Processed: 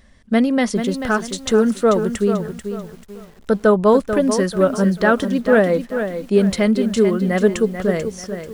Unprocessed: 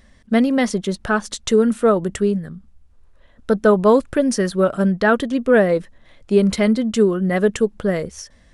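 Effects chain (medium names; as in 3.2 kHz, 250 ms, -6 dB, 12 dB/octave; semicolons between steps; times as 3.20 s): bit-crushed delay 439 ms, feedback 35%, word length 7-bit, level -8.5 dB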